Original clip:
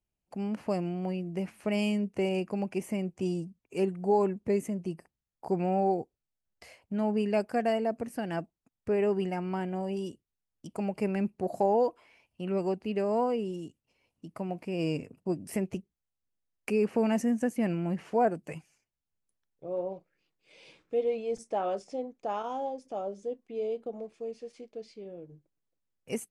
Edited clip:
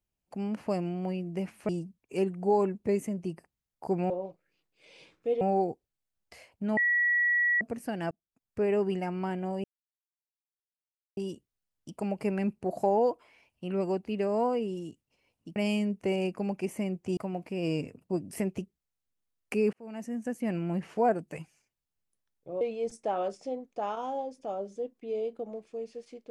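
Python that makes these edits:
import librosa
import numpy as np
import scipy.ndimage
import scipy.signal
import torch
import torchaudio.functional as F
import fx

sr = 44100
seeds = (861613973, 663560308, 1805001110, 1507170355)

y = fx.edit(x, sr, fx.move(start_s=1.69, length_s=1.61, to_s=14.33),
    fx.bleep(start_s=7.07, length_s=0.84, hz=1930.0, db=-22.5),
    fx.fade_in_span(start_s=8.41, length_s=0.51),
    fx.insert_silence(at_s=9.94, length_s=1.53),
    fx.fade_in_span(start_s=16.89, length_s=0.99),
    fx.move(start_s=19.77, length_s=1.31, to_s=5.71), tone=tone)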